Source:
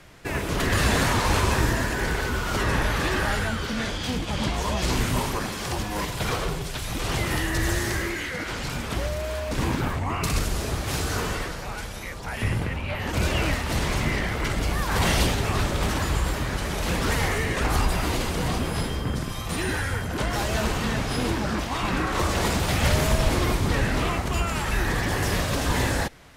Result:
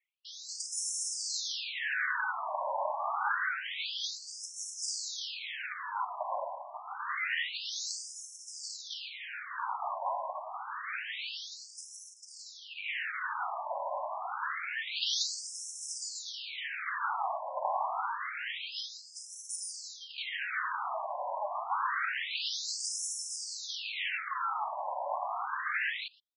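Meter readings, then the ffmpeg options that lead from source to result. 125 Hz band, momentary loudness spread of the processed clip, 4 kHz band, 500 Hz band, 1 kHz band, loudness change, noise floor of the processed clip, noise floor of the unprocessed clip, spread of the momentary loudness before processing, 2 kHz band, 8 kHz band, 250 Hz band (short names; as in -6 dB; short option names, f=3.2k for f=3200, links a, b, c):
under -40 dB, 9 LU, -6.5 dB, -14.0 dB, -5.5 dB, -9.5 dB, -50 dBFS, -33 dBFS, 7 LU, -7.5 dB, -5.5 dB, under -40 dB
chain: -filter_complex "[0:a]anlmdn=0.251,asplit=2[a][b];[b]adelay=120,highpass=300,lowpass=3.4k,asoftclip=type=hard:threshold=-18.5dB,volume=-20dB[c];[a][c]amix=inputs=2:normalize=0,afftfilt=real='re*between(b*sr/1024,760*pow(7500/760,0.5+0.5*sin(2*PI*0.27*pts/sr))/1.41,760*pow(7500/760,0.5+0.5*sin(2*PI*0.27*pts/sr))*1.41)':imag='im*between(b*sr/1024,760*pow(7500/760,0.5+0.5*sin(2*PI*0.27*pts/sr))/1.41,760*pow(7500/760,0.5+0.5*sin(2*PI*0.27*pts/sr))*1.41)':win_size=1024:overlap=0.75"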